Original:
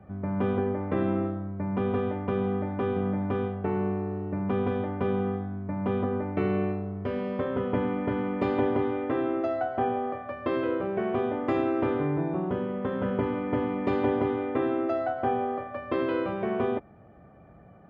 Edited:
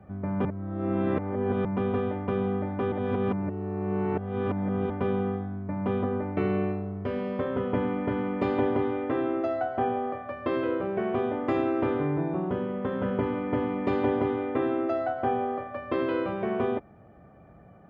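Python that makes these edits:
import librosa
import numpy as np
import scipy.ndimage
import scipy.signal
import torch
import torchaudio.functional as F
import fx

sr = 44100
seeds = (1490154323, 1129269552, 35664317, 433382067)

y = fx.edit(x, sr, fx.reverse_span(start_s=0.45, length_s=1.2),
    fx.reverse_span(start_s=2.92, length_s=1.98), tone=tone)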